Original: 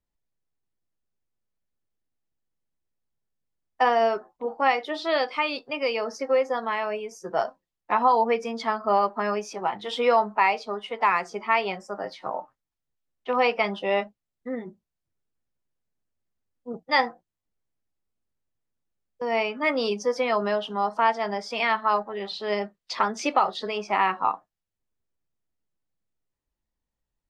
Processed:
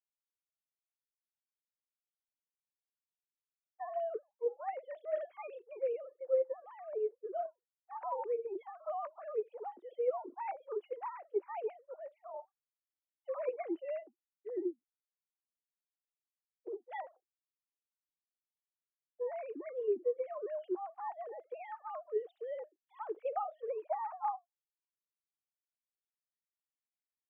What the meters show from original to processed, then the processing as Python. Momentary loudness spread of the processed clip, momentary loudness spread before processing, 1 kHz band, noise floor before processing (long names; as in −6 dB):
12 LU, 12 LU, −18.0 dB, below −85 dBFS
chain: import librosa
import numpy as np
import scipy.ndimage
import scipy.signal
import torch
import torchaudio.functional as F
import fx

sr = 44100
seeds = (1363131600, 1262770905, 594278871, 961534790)

y = fx.sine_speech(x, sr)
y = fx.filter_sweep_bandpass(y, sr, from_hz=350.0, to_hz=2200.0, start_s=22.63, end_s=26.63, q=7.3)
y = fx.rider(y, sr, range_db=4, speed_s=0.5)
y = y * 10.0 ** (3.0 / 20.0)